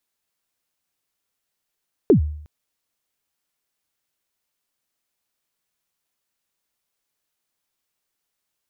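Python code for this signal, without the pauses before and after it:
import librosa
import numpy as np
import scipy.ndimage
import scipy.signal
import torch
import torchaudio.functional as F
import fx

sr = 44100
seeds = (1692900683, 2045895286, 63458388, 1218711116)

y = fx.drum_kick(sr, seeds[0], length_s=0.36, level_db=-7, start_hz=470.0, end_hz=75.0, sweep_ms=105.0, decay_s=0.64, click=False)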